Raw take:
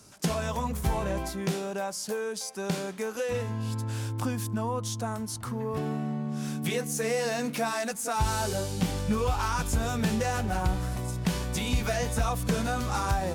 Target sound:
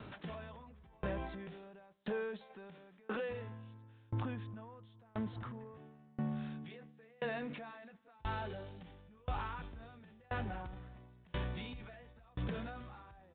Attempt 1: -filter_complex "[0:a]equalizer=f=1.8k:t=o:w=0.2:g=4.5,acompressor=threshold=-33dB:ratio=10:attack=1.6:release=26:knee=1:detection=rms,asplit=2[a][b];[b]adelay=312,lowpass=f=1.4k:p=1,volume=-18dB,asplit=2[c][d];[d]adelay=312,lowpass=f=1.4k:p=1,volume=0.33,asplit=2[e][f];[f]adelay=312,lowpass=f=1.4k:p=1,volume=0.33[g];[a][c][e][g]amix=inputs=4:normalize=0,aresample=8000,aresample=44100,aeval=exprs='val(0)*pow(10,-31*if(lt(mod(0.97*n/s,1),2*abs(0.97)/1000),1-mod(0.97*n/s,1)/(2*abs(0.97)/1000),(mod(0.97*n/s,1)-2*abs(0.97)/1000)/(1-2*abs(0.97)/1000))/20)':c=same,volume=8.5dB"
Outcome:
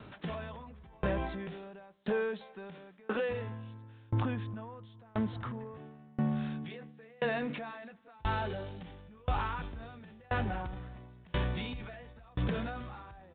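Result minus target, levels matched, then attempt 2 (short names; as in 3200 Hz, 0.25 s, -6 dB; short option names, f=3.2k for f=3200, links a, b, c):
compressor: peak gain reduction -7 dB
-filter_complex "[0:a]equalizer=f=1.8k:t=o:w=0.2:g=4.5,acompressor=threshold=-40.5dB:ratio=10:attack=1.6:release=26:knee=1:detection=rms,asplit=2[a][b];[b]adelay=312,lowpass=f=1.4k:p=1,volume=-18dB,asplit=2[c][d];[d]adelay=312,lowpass=f=1.4k:p=1,volume=0.33,asplit=2[e][f];[f]adelay=312,lowpass=f=1.4k:p=1,volume=0.33[g];[a][c][e][g]amix=inputs=4:normalize=0,aresample=8000,aresample=44100,aeval=exprs='val(0)*pow(10,-31*if(lt(mod(0.97*n/s,1),2*abs(0.97)/1000),1-mod(0.97*n/s,1)/(2*abs(0.97)/1000),(mod(0.97*n/s,1)-2*abs(0.97)/1000)/(1-2*abs(0.97)/1000))/20)':c=same,volume=8.5dB"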